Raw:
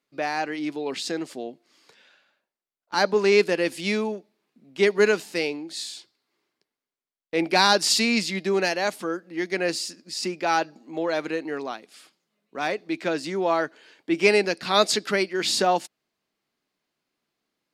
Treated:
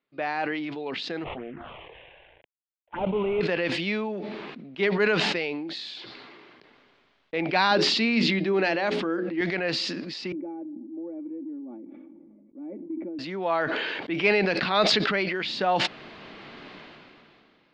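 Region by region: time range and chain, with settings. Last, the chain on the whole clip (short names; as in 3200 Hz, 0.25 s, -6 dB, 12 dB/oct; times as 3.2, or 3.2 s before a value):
1.24–3.41 CVSD 16 kbps + envelope phaser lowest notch 210 Hz, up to 1700 Hz, full sweep at -26.5 dBFS
7.71–9.41 bell 300 Hz +11.5 dB 0.72 oct + notches 60/120/180/240/300/360/420/480/540 Hz
10.32–13.19 vocal tract filter u + bell 880 Hz -15 dB 0.54 oct + comb 3.5 ms, depth 75%
whole clip: dynamic EQ 330 Hz, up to -6 dB, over -33 dBFS, Q 1.4; LPF 3600 Hz 24 dB/oct; sustainer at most 22 dB/s; gain -2 dB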